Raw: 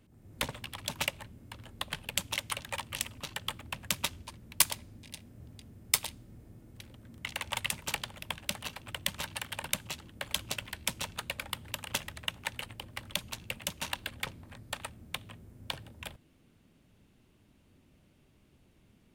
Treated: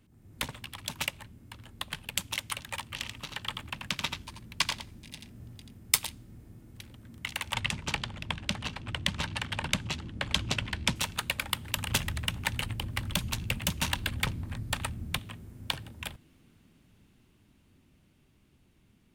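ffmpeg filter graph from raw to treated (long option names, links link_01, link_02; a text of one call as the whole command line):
ffmpeg -i in.wav -filter_complex "[0:a]asettb=1/sr,asplit=3[link_01][link_02][link_03];[link_01]atrim=end=2.914[link_04];[link_02]atrim=start=2.91:end=5.78,asetpts=PTS-STARTPTS,afade=type=in:duration=0.004:curve=qsin,afade=type=out:start_time=2.866:duration=0.004:curve=qsin,acrossover=split=5700[link_05][link_06];[link_06]acompressor=threshold=-49dB:ratio=4:attack=1:release=60[link_07];[link_05][link_07]amix=inputs=2:normalize=0,aecho=1:1:85:0.531,atrim=end_sample=126567[link_08];[link_03]atrim=start=5.776[link_09];[link_04][link_08]acrossfade=duration=0.004:curve1=hsin:curve2=qsin[link_10];[link_10][link_09]acrossfade=duration=0.004:curve1=qsin:curve2=hsin,asettb=1/sr,asplit=3[link_11][link_12][link_13];[link_11]atrim=end=7.544[link_14];[link_12]atrim=start=7.54:end=10.96,asetpts=PTS-STARTPTS,afade=type=in:duration=0.004:curve=qsin,afade=type=out:start_time=3.416:duration=0.004:curve=qsin,lowpass=5900,lowshelf=frequency=490:gain=7[link_15];[link_13]atrim=start=10.956[link_16];[link_14][link_15]acrossfade=duration=0.004:curve1=hsin:curve2=qsin[link_17];[link_17][link_16]acrossfade=duration=0.004:curve1=qsin:curve2=hsin,asettb=1/sr,asplit=3[link_18][link_19][link_20];[link_18]atrim=end=11.774[link_21];[link_19]atrim=start=11.77:end=15.19,asetpts=PTS-STARTPTS,afade=type=in:duration=0.004:curve=qsin,afade=type=out:start_time=3.416:duration=0.004:curve=qsin,lowshelf=frequency=210:gain=10,asoftclip=type=hard:threshold=-24dB[link_22];[link_20]atrim=start=15.186[link_23];[link_21][link_22]acrossfade=duration=0.004:curve1=hsin:curve2=qsin[link_24];[link_24][link_23]acrossfade=duration=0.004:curve1=qsin:curve2=hsin,equalizer=frequency=560:width=1.6:gain=-5.5,dynaudnorm=framelen=620:gausssize=11:maxgain=7dB" out.wav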